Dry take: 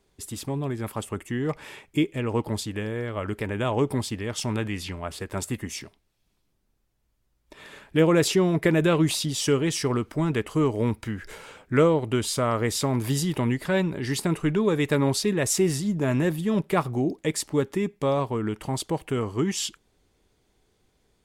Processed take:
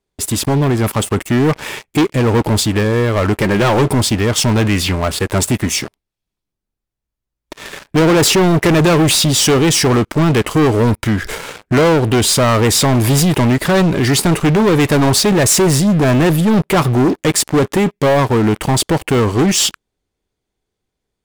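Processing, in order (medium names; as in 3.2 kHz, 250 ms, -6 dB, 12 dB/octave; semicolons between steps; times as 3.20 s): 3.41–3.88 s: comb 5.6 ms, depth 50%; waveshaping leveller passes 5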